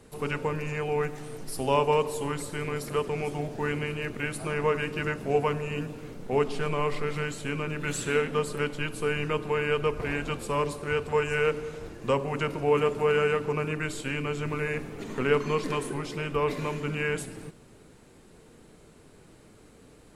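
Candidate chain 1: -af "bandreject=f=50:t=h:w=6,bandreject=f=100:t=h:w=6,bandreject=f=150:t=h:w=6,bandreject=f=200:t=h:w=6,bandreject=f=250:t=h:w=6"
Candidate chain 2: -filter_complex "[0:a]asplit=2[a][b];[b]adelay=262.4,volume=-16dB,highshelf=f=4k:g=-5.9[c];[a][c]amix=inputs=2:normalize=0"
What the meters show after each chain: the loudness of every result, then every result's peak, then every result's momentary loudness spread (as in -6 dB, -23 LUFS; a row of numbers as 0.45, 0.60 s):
-29.5, -29.0 LUFS; -11.0, -11.0 dBFS; 8, 8 LU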